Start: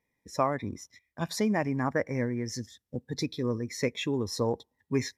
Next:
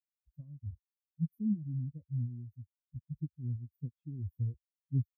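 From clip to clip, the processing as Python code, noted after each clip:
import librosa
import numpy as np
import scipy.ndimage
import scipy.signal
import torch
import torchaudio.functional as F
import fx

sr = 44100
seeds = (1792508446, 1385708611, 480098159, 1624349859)

y = fx.bin_expand(x, sr, power=3.0)
y = scipy.signal.sosfilt(scipy.signal.cheby2(4, 70, [730.0, 8500.0], 'bandstop', fs=sr, output='sos'), y)
y = y * librosa.db_to_amplitude(7.5)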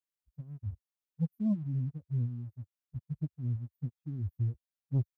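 y = fx.leveller(x, sr, passes=1)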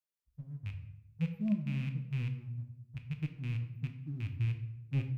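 y = fx.rattle_buzz(x, sr, strikes_db=-33.0, level_db=-34.0)
y = fx.room_shoebox(y, sr, seeds[0], volume_m3=240.0, walls='mixed', distance_m=0.58)
y = y * librosa.db_to_amplitude(-3.5)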